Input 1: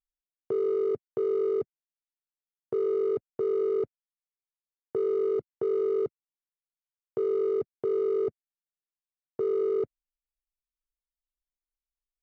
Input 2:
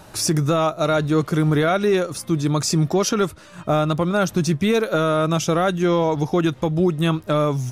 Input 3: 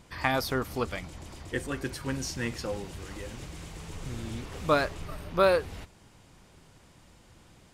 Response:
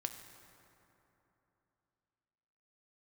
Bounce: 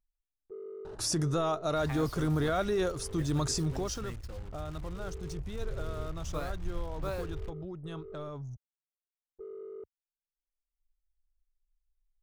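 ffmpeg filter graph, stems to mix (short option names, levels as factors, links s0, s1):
-filter_complex "[0:a]agate=range=0.0224:threshold=0.112:ratio=3:detection=peak,volume=0.316[s0];[1:a]equalizer=f=2300:t=o:w=0.45:g=-7.5,alimiter=limit=0.211:level=0:latency=1:release=12,lowpass=f=11000:w=0.5412,lowpass=f=11000:w=1.3066,adelay=850,volume=0.422,afade=t=out:st=3.43:d=0.7:silence=0.266073[s1];[2:a]lowshelf=f=340:g=8.5,acrusher=bits=5:mix=0:aa=0.000001,adelay=1650,volume=0.15[s2];[s0][s1][s2]amix=inputs=3:normalize=0,anlmdn=0.00398,asubboost=boost=7:cutoff=74,acompressor=mode=upward:threshold=0.0126:ratio=2.5"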